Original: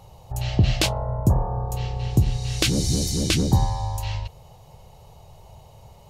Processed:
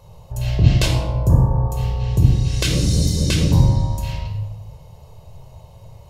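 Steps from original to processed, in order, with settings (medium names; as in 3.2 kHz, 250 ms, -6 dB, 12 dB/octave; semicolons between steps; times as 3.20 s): simulated room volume 3900 m³, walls furnished, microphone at 5.2 m; trim -3 dB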